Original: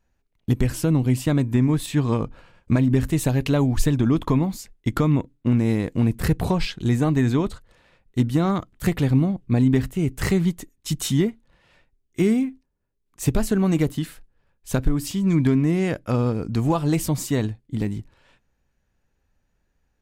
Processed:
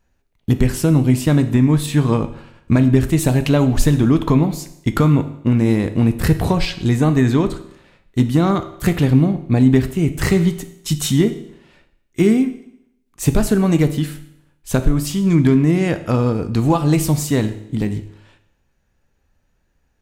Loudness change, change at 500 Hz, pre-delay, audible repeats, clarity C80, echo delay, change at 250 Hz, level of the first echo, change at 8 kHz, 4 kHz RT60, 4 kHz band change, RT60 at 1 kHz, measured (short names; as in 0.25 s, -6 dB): +5.5 dB, +5.5 dB, 12 ms, none, 15.5 dB, none, +5.5 dB, none, +5.5 dB, 0.75 s, +5.5 dB, 0.75 s